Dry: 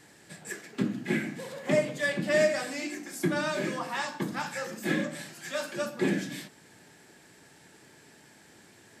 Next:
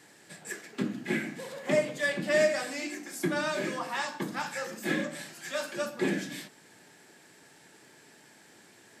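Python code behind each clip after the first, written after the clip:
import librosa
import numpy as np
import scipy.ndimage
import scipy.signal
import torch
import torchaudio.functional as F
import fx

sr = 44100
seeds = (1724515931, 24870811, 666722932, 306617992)

y = fx.highpass(x, sr, hz=210.0, slope=6)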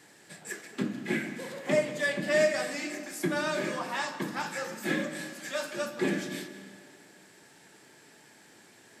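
y = fx.rev_freeverb(x, sr, rt60_s=2.1, hf_ratio=0.75, predelay_ms=110, drr_db=11.5)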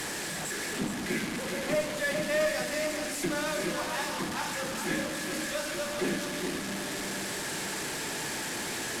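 y = fx.delta_mod(x, sr, bps=64000, step_db=-28.0)
y = y + 10.0 ** (-7.0 / 20.0) * np.pad(y, (int(420 * sr / 1000.0), 0))[:len(y)]
y = fx.tube_stage(y, sr, drive_db=21.0, bias=0.35)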